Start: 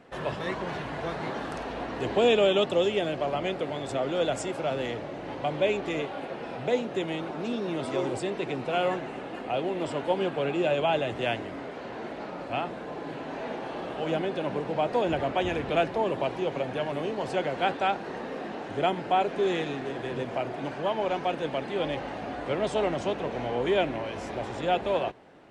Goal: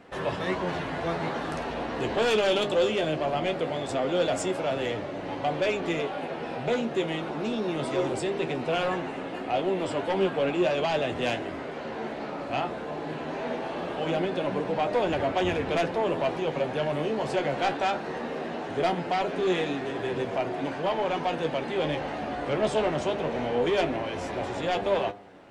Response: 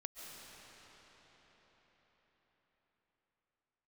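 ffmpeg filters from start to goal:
-af "bandreject=frequency=101.7:width_type=h:width=4,bandreject=frequency=203.4:width_type=h:width=4,bandreject=frequency=305.1:width_type=h:width=4,bandreject=frequency=406.8:width_type=h:width=4,bandreject=frequency=508.5:width_type=h:width=4,bandreject=frequency=610.2:width_type=h:width=4,bandreject=frequency=711.9:width_type=h:width=4,bandreject=frequency=813.6:width_type=h:width=4,bandreject=frequency=915.3:width_type=h:width=4,bandreject=frequency=1017:width_type=h:width=4,bandreject=frequency=1118.7:width_type=h:width=4,bandreject=frequency=1220.4:width_type=h:width=4,bandreject=frequency=1322.1:width_type=h:width=4,bandreject=frequency=1423.8:width_type=h:width=4,bandreject=frequency=1525.5:width_type=h:width=4,bandreject=frequency=1627.2:width_type=h:width=4,bandreject=frequency=1728.9:width_type=h:width=4,aeval=exprs='0.251*(cos(1*acos(clip(val(0)/0.251,-1,1)))-cos(1*PI/2))+0.0631*(cos(5*acos(clip(val(0)/0.251,-1,1)))-cos(5*PI/2))':channel_layout=same,flanger=delay=10:depth=4.1:regen=45:speed=0.2:shape=triangular"

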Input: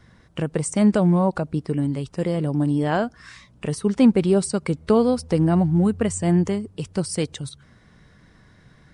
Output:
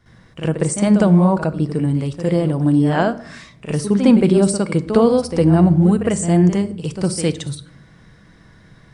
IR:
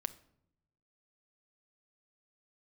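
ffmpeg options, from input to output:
-filter_complex "[0:a]asplit=2[link_01][link_02];[1:a]atrim=start_sample=2205,adelay=59[link_03];[link_02][link_03]afir=irnorm=-1:irlink=0,volume=10.5dB[link_04];[link_01][link_04]amix=inputs=2:normalize=0,volume=-5.5dB"

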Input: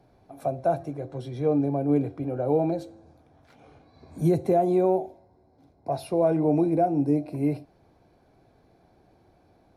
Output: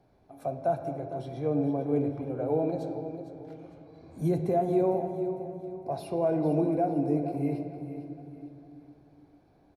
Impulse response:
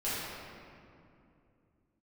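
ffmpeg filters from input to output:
-filter_complex "[0:a]aecho=1:1:454|908|1362|1816:0.251|0.0929|0.0344|0.0127,asplit=2[link_01][link_02];[1:a]atrim=start_sample=2205,lowpass=5100[link_03];[link_02][link_03]afir=irnorm=-1:irlink=0,volume=-12.5dB[link_04];[link_01][link_04]amix=inputs=2:normalize=0,volume=-6dB"

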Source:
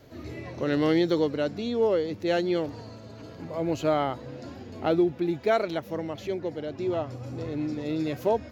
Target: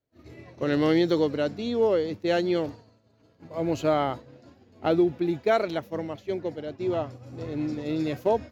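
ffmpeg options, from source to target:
ffmpeg -i in.wav -af "agate=range=-33dB:threshold=-30dB:ratio=3:detection=peak,volume=1dB" out.wav

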